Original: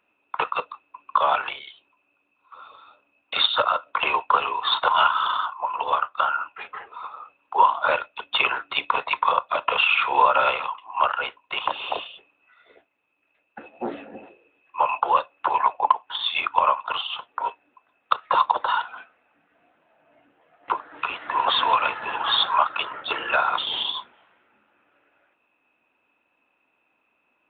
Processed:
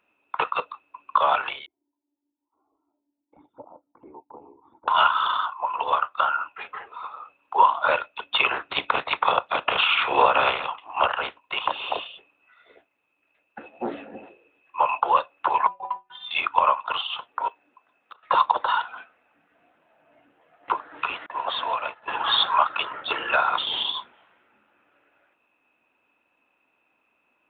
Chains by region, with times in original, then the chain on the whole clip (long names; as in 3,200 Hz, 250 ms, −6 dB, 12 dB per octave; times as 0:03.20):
0:01.66–0:04.88: high-shelf EQ 3,400 Hz −10.5 dB + flanger swept by the level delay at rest 3.3 ms, full sweep at −19.5 dBFS + formant resonators in series u
0:08.50–0:11.38: ceiling on every frequency bin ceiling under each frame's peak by 13 dB + high-frequency loss of the air 64 metres
0:15.67–0:16.31: bass and treble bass +9 dB, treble −9 dB + stiff-string resonator 180 Hz, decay 0.22 s, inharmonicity 0.008
0:17.48–0:18.23: downward compressor 4 to 1, threshold −45 dBFS + high-pass filter 120 Hz + linearly interpolated sample-rate reduction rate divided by 2×
0:21.26–0:22.08: downward expander −21 dBFS + parametric band 630 Hz +7.5 dB 0.55 octaves + downward compressor 1.5 to 1, threshold −36 dBFS
whole clip: no processing